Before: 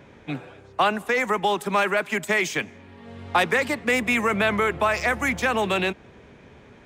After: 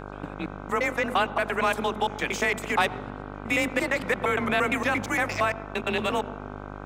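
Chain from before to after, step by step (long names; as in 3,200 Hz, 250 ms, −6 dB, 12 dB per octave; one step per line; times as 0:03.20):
slices reordered back to front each 115 ms, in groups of 6
frequency shifter +28 Hz
hum with harmonics 50 Hz, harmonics 31, −36 dBFS −2 dB per octave
on a send: convolution reverb RT60 1.2 s, pre-delay 78 ms, DRR 17 dB
on the sum: level −3 dB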